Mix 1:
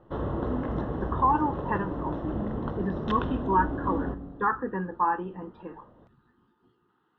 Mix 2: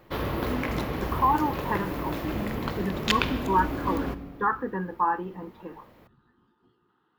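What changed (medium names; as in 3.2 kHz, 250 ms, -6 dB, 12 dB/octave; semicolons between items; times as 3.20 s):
background: remove boxcar filter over 19 samples; master: remove distance through air 100 m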